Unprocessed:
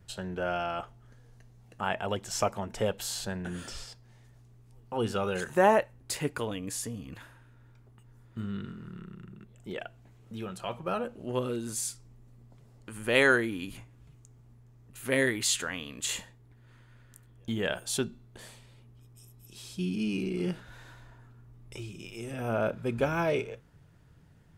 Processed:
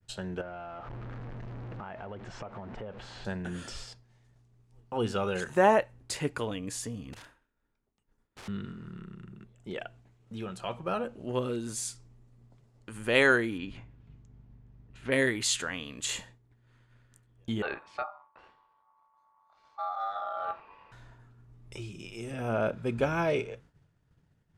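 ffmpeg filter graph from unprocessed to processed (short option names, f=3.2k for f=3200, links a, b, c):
-filter_complex "[0:a]asettb=1/sr,asplit=3[a][b][c];[a]atrim=end=0.414[d];[b]atrim=start=0.41:end=3.25,asetpts=PTS-STARTPTS,afade=t=in:d=0.004:c=qsin,afade=t=out:st=2.836:d=0.004:c=qsin,aeval=exprs='val(0)+0.5*0.0168*sgn(val(0))':c=same,lowpass=1.8k,acompressor=threshold=-39dB:ratio=5:attack=3.2:release=140:knee=1:detection=peak[e];[c]atrim=start=3.246[f];[d][e]acrossfade=d=0.004:c1=hsin:c2=qsin[g];[g][f]acrossfade=d=0.004:c1=qsin:c2=hsin,asettb=1/sr,asplit=3[h][i][j];[h]atrim=end=7.134[k];[i]atrim=start=7.13:end=8.48,asetpts=PTS-STARTPTS,afade=t=in:d=0.004:c=qsin,afade=t=out:st=1.346:d=0.004:c=qsin,aeval=exprs='(mod(126*val(0)+1,2)-1)/126':c=same,bandreject=f=60:t=h:w=6,bandreject=f=120:t=h:w=6,bandreject=f=180:t=h:w=6,bandreject=f=240:t=h:w=6,bandreject=f=300:t=h:w=6,bandreject=f=360:t=h:w=6[l];[j]atrim=start=8.476[m];[k][l]acrossfade=d=0.004:c1=hsin:c2=qsin[n];[n][m]acrossfade=d=0.004:c1=qsin:c2=hsin,asettb=1/sr,asplit=3[o][p][q];[o]atrim=end=13.584[r];[p]atrim=start=13.58:end=15.12,asetpts=PTS-STARTPTS,afade=t=in:d=0.004:c=qsin,afade=t=out:st=1.536:d=0.004:c=qsin,lowpass=3.6k,aeval=exprs='val(0)+0.002*(sin(2*PI*50*n/s)+sin(2*PI*2*50*n/s)/2+sin(2*PI*3*50*n/s)/3+sin(2*PI*4*50*n/s)/4+sin(2*PI*5*50*n/s)/5)':c=same,bandreject=f=1.2k:w=18[s];[q]atrim=start=15.116[t];[r][s]acrossfade=d=0.004:c1=hsin:c2=qsin[u];[u][t]acrossfade=d=0.004:c1=qsin:c2=hsin,asettb=1/sr,asplit=3[v][w][x];[v]atrim=end=17.624[y];[w]atrim=start=17.62:end=20.92,asetpts=PTS-STARTPTS,afade=t=in:d=0.004:c=qsin,afade=t=out:st=3.296:d=0.004:c=qsin,lowpass=1.6k,bandreject=f=50:t=h:w=6,bandreject=f=100:t=h:w=6,bandreject=f=150:t=h:w=6,bandreject=f=200:t=h:w=6,bandreject=f=250:t=h:w=6,bandreject=f=300:t=h:w=6,bandreject=f=350:t=h:w=6,bandreject=f=400:t=h:w=6,bandreject=f=450:t=h:w=6,aeval=exprs='val(0)*sin(2*PI*1000*n/s)':c=same[z];[x]atrim=start=20.916[aa];[y][z]acrossfade=d=0.004:c1=hsin:c2=qsin[ab];[ab][aa]acrossfade=d=0.004:c1=qsin:c2=hsin,lowpass=9k,agate=range=-33dB:threshold=-50dB:ratio=3:detection=peak"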